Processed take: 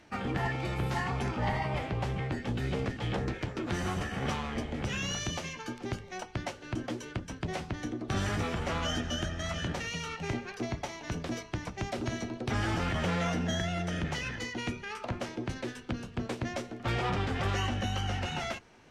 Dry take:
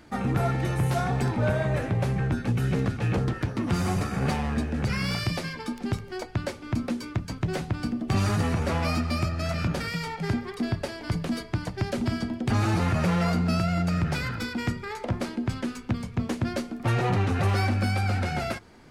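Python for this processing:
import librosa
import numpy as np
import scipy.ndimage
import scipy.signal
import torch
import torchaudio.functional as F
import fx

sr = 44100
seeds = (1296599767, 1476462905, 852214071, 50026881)

y = fx.octave_divider(x, sr, octaves=1, level_db=-5.0)
y = scipy.signal.sosfilt(scipy.signal.butter(2, 5300.0, 'lowpass', fs=sr, output='sos'), y)
y = fx.low_shelf(y, sr, hz=360.0, db=-6.0)
y = fx.formant_shift(y, sr, semitones=4)
y = F.gain(torch.from_numpy(y), -3.5).numpy()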